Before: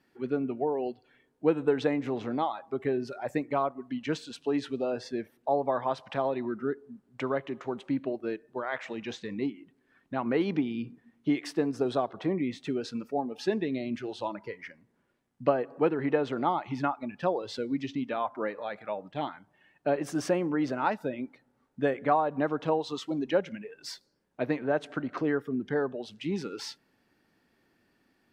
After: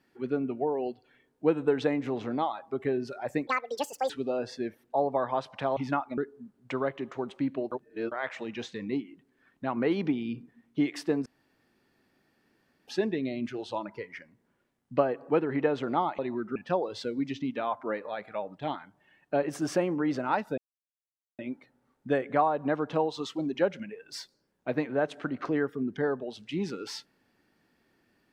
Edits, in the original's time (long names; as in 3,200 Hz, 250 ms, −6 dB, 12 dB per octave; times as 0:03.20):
0:03.47–0:04.63: play speed 185%
0:06.30–0:06.67: swap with 0:16.68–0:17.09
0:08.21–0:08.61: reverse
0:11.75–0:13.37: fill with room tone
0:21.11: splice in silence 0.81 s